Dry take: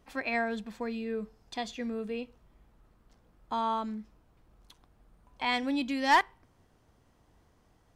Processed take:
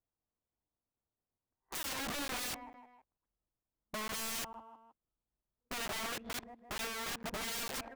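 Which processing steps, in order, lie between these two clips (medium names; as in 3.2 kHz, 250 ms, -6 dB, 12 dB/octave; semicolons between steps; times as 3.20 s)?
reverse the whole clip; low-pass 1.8 kHz 24 dB/octave; gate -52 dBFS, range -29 dB; peaking EQ 600 Hz +3.5 dB 2.6 oct; waveshaping leveller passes 2; compression 1.5:1, threshold -42 dBFS, peak gain reduction 10 dB; on a send: feedback delay 158 ms, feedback 49%, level -22 dB; on the sum: integer overflow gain 35 dB; crackling interface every 0.45 s, samples 512, zero, from 0.48 s; trim +1 dB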